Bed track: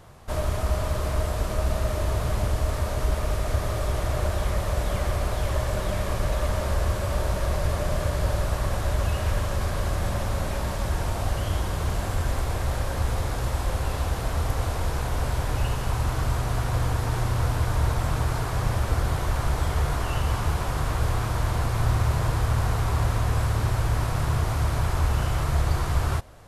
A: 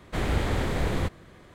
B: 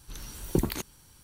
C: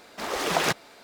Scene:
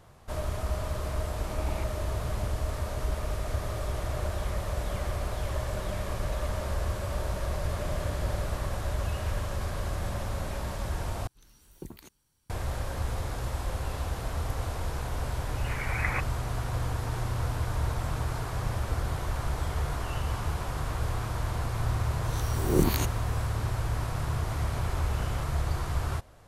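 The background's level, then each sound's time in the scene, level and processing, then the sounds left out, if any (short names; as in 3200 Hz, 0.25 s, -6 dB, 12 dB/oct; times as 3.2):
bed track -6 dB
1.12 add C -5 dB + vowel filter u
7.58 add A -16 dB
11.27 replace with B -17 dB
15.48 add C -7 dB + inverted band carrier 2700 Hz
22.24 add B -0.5 dB + spectral swells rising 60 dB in 0.58 s
24.37 add A -16 dB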